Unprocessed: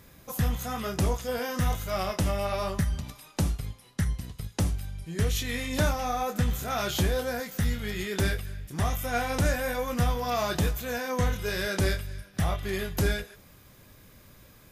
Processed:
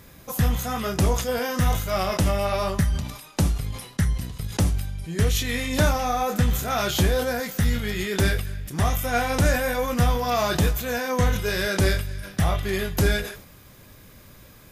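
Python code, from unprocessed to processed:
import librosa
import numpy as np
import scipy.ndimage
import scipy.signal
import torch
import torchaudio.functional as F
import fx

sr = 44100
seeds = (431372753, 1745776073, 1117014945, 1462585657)

y = fx.sustainer(x, sr, db_per_s=87.0)
y = F.gain(torch.from_numpy(y), 5.0).numpy()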